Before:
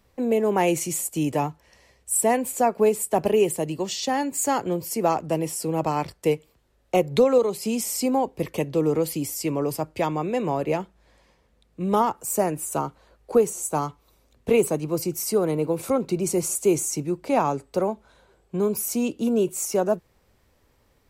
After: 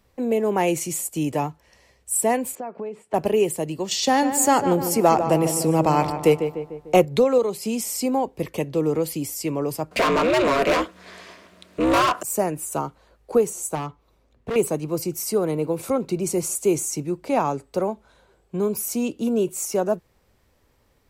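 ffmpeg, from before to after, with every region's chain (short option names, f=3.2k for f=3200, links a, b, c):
-filter_complex "[0:a]asettb=1/sr,asplit=3[a][b][c];[a]atrim=end=2.554[d];[b]atrim=start=2.55:end=3.14,asetpts=PTS-STARTPTS,afade=t=in:d=0.004:c=qsin,afade=t=out:st=0.586:d=0.004:c=qsin,acompressor=threshold=-30dB:ratio=4:attack=3.2:release=140:knee=1:detection=peak,highpass=130,lowpass=2.4k[e];[c]atrim=start=3.136[f];[d][e]acrossfade=d=0.004:c1=hsin:c2=qsin[g];[g][f]acrossfade=d=0.004:c1=qsin:c2=hsin,asettb=1/sr,asplit=3[h][i][j];[h]atrim=end=3.914[k];[i]atrim=start=3.91:end=7.05,asetpts=PTS-STARTPTS,afade=t=in:d=0.004:c=qsin,afade=t=out:st=3.136:d=0.004:c=qsin,asplit=2[l][m];[m]adelay=149,lowpass=f=2.1k:p=1,volume=-8.5dB,asplit=2[n][o];[o]adelay=149,lowpass=f=2.1k:p=1,volume=0.54,asplit=2[p][q];[q]adelay=149,lowpass=f=2.1k:p=1,volume=0.54,asplit=2[r][s];[s]adelay=149,lowpass=f=2.1k:p=1,volume=0.54,asplit=2[t][u];[u]adelay=149,lowpass=f=2.1k:p=1,volume=0.54,asplit=2[v][w];[w]adelay=149,lowpass=f=2.1k:p=1,volume=0.54[x];[l][n][p][r][t][v][x]amix=inputs=7:normalize=0,atrim=end_sample=138474,acontrast=38[y];[j]atrim=start=7.046[z];[k][y]acrossfade=d=0.004:c1=hsin:c2=qsin[aa];[aa][z]acrossfade=d=0.004:c1=qsin:c2=hsin,asettb=1/sr,asplit=3[ab][ac][ad];[ab]atrim=end=9.914[ae];[ac]atrim=start=9.91:end=12.23,asetpts=PTS-STARTPTS,afade=t=in:d=0.004:c=qsin,afade=t=out:st=2.316:d=0.004:c=qsin,aeval=exprs='val(0)*sin(2*PI*130*n/s)':c=same,asplit=2[af][ag];[ag]highpass=f=720:p=1,volume=30dB,asoftclip=type=tanh:threshold=-10.5dB[ah];[af][ah]amix=inputs=2:normalize=0,lowpass=f=5.6k:p=1,volume=-6dB,asuperstop=centerf=820:order=4:qfactor=6[ai];[ad]atrim=start=12.226[aj];[ae][ai]acrossfade=d=0.004:c1=hsin:c2=qsin[ak];[ak][aj]acrossfade=d=0.004:c1=qsin:c2=hsin,asettb=1/sr,asplit=3[al][am][an];[al]atrim=end=13.754[ao];[am]atrim=start=13.75:end=14.56,asetpts=PTS-STARTPTS,afade=t=in:d=0.004:c=qsin,afade=t=out:st=0.806:d=0.004:c=qsin,lowpass=f=2.2k:p=1,asoftclip=type=hard:threshold=-23.5dB[ap];[an]atrim=start=14.556[aq];[ao][ap]acrossfade=d=0.004:c1=hsin:c2=qsin[ar];[ar][aq]acrossfade=d=0.004:c1=qsin:c2=hsin"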